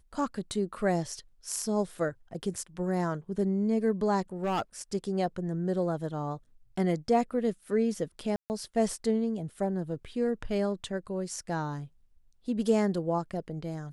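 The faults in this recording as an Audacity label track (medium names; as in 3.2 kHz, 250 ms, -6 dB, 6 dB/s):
4.430000	4.620000	clipped -25.5 dBFS
8.360000	8.500000	dropout 139 ms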